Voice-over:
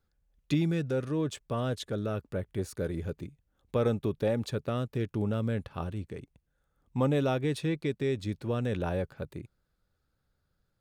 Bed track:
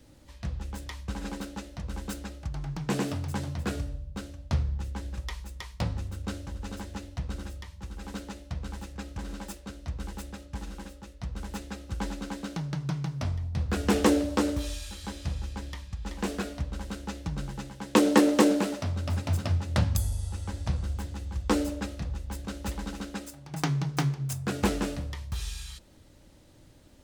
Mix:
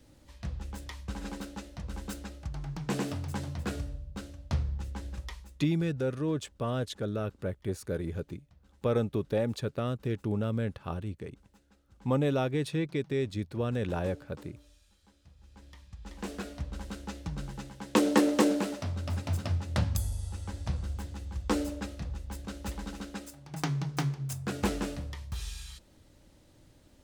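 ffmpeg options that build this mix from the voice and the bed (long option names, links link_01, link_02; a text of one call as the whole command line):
ffmpeg -i stem1.wav -i stem2.wav -filter_complex "[0:a]adelay=5100,volume=-0.5dB[link_01];[1:a]volume=19.5dB,afade=type=out:start_time=5.14:duration=0.61:silence=0.0707946,afade=type=in:start_time=15.36:duration=1.41:silence=0.0749894[link_02];[link_01][link_02]amix=inputs=2:normalize=0" out.wav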